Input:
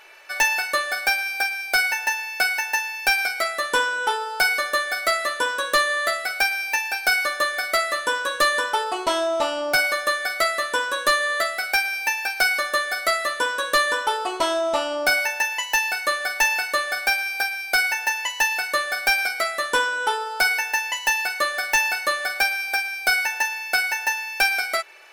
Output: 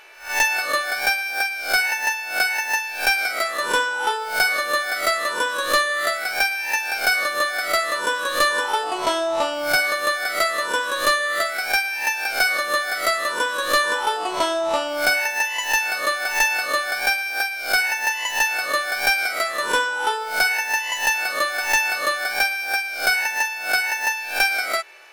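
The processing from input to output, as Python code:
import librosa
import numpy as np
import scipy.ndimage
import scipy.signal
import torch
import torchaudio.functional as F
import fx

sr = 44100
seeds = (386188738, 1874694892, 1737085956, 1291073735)

y = fx.spec_swells(x, sr, rise_s=0.39)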